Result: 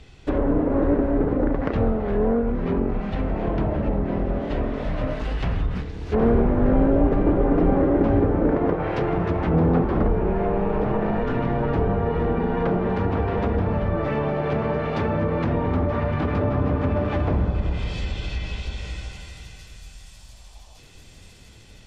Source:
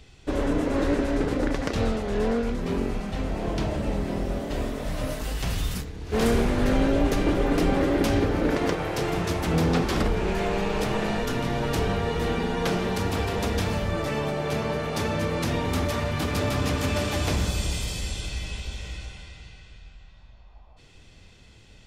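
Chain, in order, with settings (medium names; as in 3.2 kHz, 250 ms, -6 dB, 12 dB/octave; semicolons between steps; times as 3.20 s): treble shelf 4.8 kHz -8.5 dB; feedback echo behind a high-pass 1159 ms, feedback 67%, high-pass 5.3 kHz, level -10.5 dB; low-pass that closes with the level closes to 1.1 kHz, closed at -21.5 dBFS; trim +4 dB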